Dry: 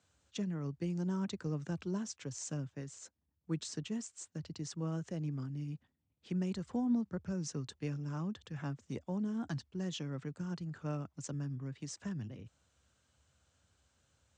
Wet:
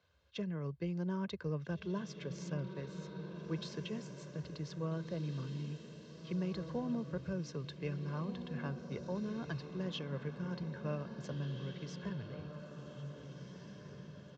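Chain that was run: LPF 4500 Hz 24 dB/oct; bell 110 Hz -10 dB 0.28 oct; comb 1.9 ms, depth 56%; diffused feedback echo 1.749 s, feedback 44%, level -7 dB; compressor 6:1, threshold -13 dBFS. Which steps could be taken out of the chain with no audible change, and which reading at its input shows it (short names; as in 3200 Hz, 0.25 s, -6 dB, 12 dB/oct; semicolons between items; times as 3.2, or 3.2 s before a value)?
compressor, threshold -13 dBFS: input peak -25.5 dBFS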